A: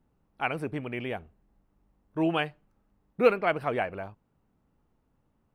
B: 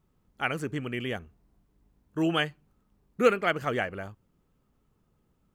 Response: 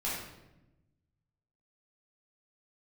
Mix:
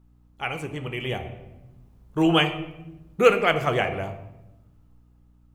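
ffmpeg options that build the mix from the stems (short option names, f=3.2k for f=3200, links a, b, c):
-filter_complex "[0:a]flanger=delay=7.1:depth=7.5:regen=52:speed=0.39:shape=triangular,alimiter=limit=-21dB:level=0:latency=1:release=460,volume=2.5dB,asplit=2[a][b];[b]volume=-5.5dB[c];[1:a]equalizer=f=920:w=0.36:g=6,volume=-3dB,asplit=2[d][e];[e]volume=-14dB[f];[2:a]atrim=start_sample=2205[g];[c][f]amix=inputs=2:normalize=0[h];[h][g]afir=irnorm=-1:irlink=0[i];[a][d][i]amix=inputs=3:normalize=0,equalizer=f=250:t=o:w=1:g=-10,equalizer=f=500:t=o:w=1:g=-4,equalizer=f=1k:t=o:w=1:g=-3,equalizer=f=2k:t=o:w=1:g=-4,dynaudnorm=f=370:g=7:m=7.5dB,aeval=exprs='val(0)+0.00158*(sin(2*PI*60*n/s)+sin(2*PI*2*60*n/s)/2+sin(2*PI*3*60*n/s)/3+sin(2*PI*4*60*n/s)/4+sin(2*PI*5*60*n/s)/5)':c=same"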